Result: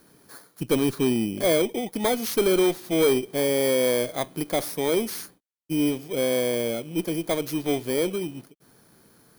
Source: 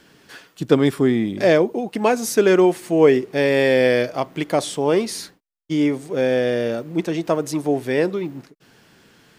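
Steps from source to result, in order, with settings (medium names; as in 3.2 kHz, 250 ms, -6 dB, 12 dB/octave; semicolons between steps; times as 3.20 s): bit-reversed sample order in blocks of 16 samples; valve stage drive 11 dB, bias 0.25; trim -3 dB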